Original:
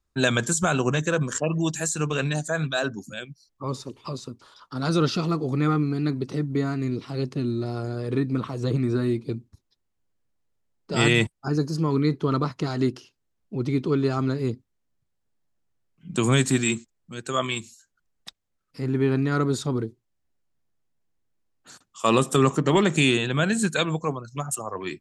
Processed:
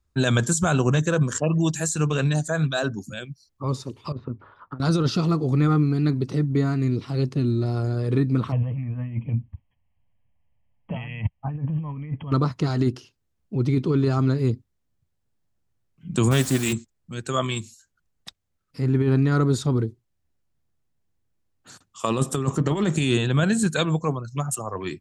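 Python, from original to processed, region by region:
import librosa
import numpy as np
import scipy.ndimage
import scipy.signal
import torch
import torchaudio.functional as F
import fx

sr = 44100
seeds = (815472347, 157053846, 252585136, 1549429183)

y = fx.chain(x, sr, fx.lowpass(hz=2000.0, slope=24),
    fx.hum_notches(base_hz=50, count=2),
    fx.over_compress(threshold_db=-35.0, ratio=-0.5), at=(4.12, 4.8))
y = fx.chain(y, sr, fx.brickwall_lowpass(high_hz=3300.0),
    fx.over_compress(threshold_db=-30.0, ratio=-1.0),
    fx.fixed_phaser(hz=1400.0, stages=6), at=(8.52, 12.32))
y = fx.chain(y, sr, fx.bass_treble(bass_db=-6, treble_db=-2),
    fx.quant_dither(seeds[0], bits=6, dither='triangular'),
    fx.doppler_dist(depth_ms=0.16), at=(16.31, 16.73))
y = fx.dynamic_eq(y, sr, hz=2300.0, q=1.7, threshold_db=-38.0, ratio=4.0, max_db=-4)
y = fx.over_compress(y, sr, threshold_db=-21.0, ratio=-0.5)
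y = fx.peak_eq(y, sr, hz=83.0, db=9.0, octaves=1.8)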